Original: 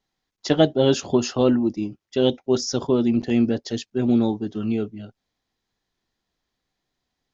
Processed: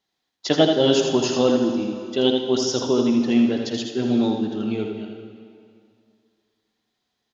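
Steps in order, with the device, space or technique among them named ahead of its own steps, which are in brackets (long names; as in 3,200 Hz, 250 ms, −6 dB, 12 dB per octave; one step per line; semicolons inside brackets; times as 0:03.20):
PA in a hall (high-pass filter 190 Hz 6 dB per octave; parametric band 3,500 Hz +4.5 dB 0.68 octaves; single-tap delay 81 ms −6.5 dB; convolution reverb RT60 2.3 s, pre-delay 42 ms, DRR 5.5 dB)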